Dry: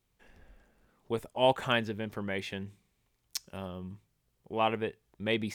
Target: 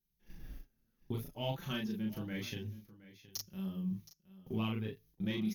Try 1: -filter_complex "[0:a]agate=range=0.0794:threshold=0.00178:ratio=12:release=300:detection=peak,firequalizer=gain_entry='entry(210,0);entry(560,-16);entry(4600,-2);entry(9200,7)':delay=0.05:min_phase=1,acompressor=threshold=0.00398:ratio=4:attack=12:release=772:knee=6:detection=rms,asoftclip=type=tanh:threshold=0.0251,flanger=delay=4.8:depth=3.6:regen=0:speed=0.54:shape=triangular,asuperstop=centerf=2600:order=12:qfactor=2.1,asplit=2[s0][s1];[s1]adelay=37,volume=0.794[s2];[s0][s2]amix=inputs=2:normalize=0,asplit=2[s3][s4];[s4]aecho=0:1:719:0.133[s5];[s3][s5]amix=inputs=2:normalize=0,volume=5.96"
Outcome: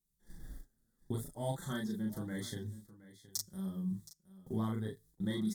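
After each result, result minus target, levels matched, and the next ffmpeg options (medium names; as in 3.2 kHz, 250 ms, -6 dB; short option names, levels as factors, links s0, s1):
8 kHz band +5.5 dB; saturation: distortion -6 dB
-filter_complex "[0:a]agate=range=0.0794:threshold=0.00178:ratio=12:release=300:detection=peak,firequalizer=gain_entry='entry(210,0);entry(560,-16);entry(4600,-2);entry(9200,7)':delay=0.05:min_phase=1,acompressor=threshold=0.00398:ratio=4:attack=12:release=772:knee=6:detection=rms,asoftclip=type=tanh:threshold=0.0251,flanger=delay=4.8:depth=3.6:regen=0:speed=0.54:shape=triangular,asuperstop=centerf=8500:order=12:qfactor=2.1,asplit=2[s0][s1];[s1]adelay=37,volume=0.794[s2];[s0][s2]amix=inputs=2:normalize=0,asplit=2[s3][s4];[s4]aecho=0:1:719:0.133[s5];[s3][s5]amix=inputs=2:normalize=0,volume=5.96"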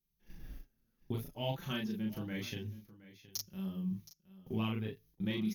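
saturation: distortion -6 dB
-filter_complex "[0:a]agate=range=0.0794:threshold=0.00178:ratio=12:release=300:detection=peak,firequalizer=gain_entry='entry(210,0);entry(560,-16);entry(4600,-2);entry(9200,7)':delay=0.05:min_phase=1,acompressor=threshold=0.00398:ratio=4:attack=12:release=772:knee=6:detection=rms,asoftclip=type=tanh:threshold=0.0126,flanger=delay=4.8:depth=3.6:regen=0:speed=0.54:shape=triangular,asuperstop=centerf=8500:order=12:qfactor=2.1,asplit=2[s0][s1];[s1]adelay=37,volume=0.794[s2];[s0][s2]amix=inputs=2:normalize=0,asplit=2[s3][s4];[s4]aecho=0:1:719:0.133[s5];[s3][s5]amix=inputs=2:normalize=0,volume=5.96"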